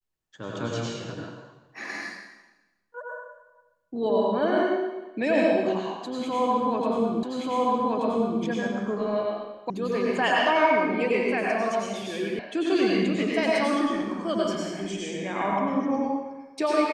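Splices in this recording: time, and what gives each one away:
7.23 repeat of the last 1.18 s
9.7 sound cut off
12.39 sound cut off

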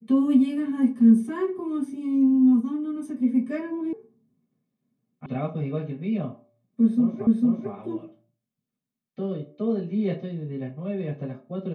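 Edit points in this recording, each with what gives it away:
3.93 sound cut off
5.26 sound cut off
7.27 repeat of the last 0.45 s

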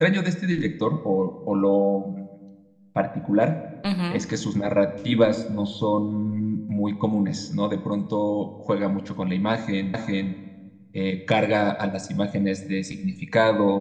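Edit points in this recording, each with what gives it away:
9.94 repeat of the last 0.4 s

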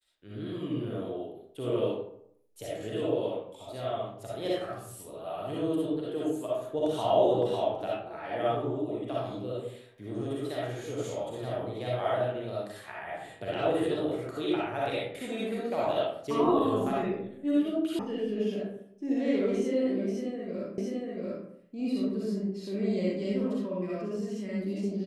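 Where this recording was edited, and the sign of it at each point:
17.99 sound cut off
20.78 repeat of the last 0.69 s

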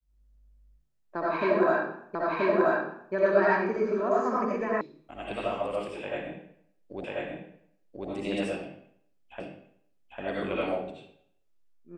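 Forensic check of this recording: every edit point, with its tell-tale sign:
2.15 repeat of the last 0.98 s
4.81 sound cut off
7.04 repeat of the last 1.04 s
9.4 repeat of the last 0.8 s

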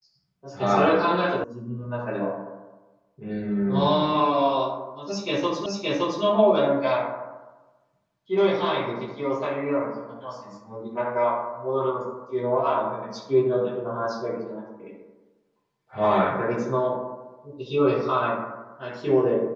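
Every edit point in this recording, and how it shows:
1.44 sound cut off
5.66 repeat of the last 0.57 s

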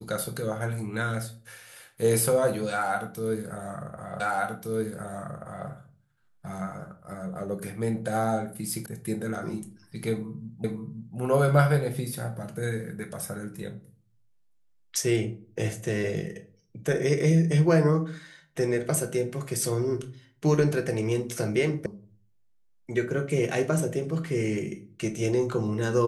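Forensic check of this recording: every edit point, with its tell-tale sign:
4.2 repeat of the last 1.48 s
8.86 sound cut off
10.64 repeat of the last 0.53 s
21.86 sound cut off

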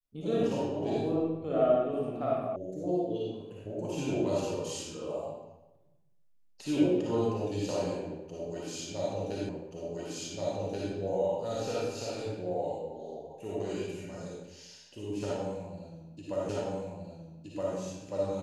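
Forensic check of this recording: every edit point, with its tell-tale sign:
2.56 sound cut off
9.49 repeat of the last 1.43 s
16.49 repeat of the last 1.27 s

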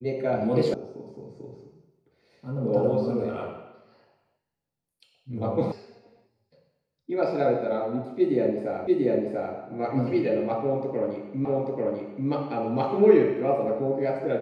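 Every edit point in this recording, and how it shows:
0.74 sound cut off
5.72 sound cut off
8.87 repeat of the last 0.69 s
11.45 repeat of the last 0.84 s

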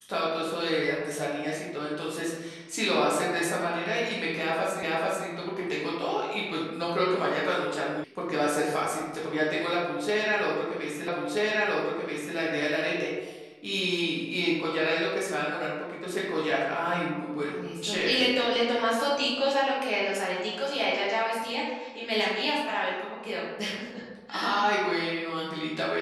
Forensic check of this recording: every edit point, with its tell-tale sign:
4.83 repeat of the last 0.44 s
8.04 sound cut off
11.08 repeat of the last 1.28 s

